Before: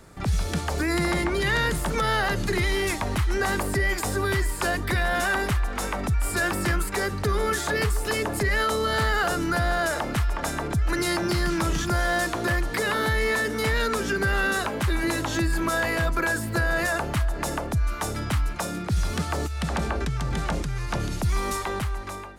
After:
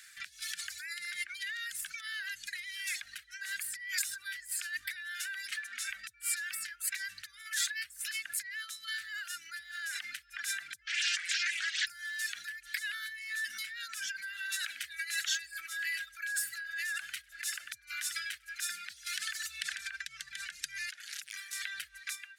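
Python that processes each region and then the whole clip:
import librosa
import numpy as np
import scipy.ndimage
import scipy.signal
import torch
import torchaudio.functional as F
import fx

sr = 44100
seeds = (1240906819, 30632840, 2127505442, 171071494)

y = fx.chain(x, sr, fx.highpass_res(hz=270.0, q=2.2),
    fx.peak_eq(hz=14000.0, db=-11.5, octaves=0.26), at=(5.46, 5.9))
y = fx.chain(y, sr, fx.cvsd(bps=32000),
    fx.highpass(hz=710.0, slope=12),
    fx.doppler_dist(depth_ms=0.52), at=(10.86, 11.87))
y = fx.chain(y, sr, fx.peak_eq(hz=130.0, db=-5.5, octaves=1.9),
    fx.echo_single(ms=98, db=-9.5), at=(14.24, 20.02))
y = fx.chain(y, sr, fx.highpass(hz=200.0, slope=12),
    fx.over_compress(threshold_db=-36.0, ratio=-1.0),
    fx.transformer_sat(knee_hz=2400.0), at=(20.88, 21.53))
y = fx.dereverb_blind(y, sr, rt60_s=1.2)
y = fx.over_compress(y, sr, threshold_db=-33.0, ratio=-1.0)
y = scipy.signal.sosfilt(scipy.signal.ellip(4, 1.0, 40, 1600.0, 'highpass', fs=sr, output='sos'), y)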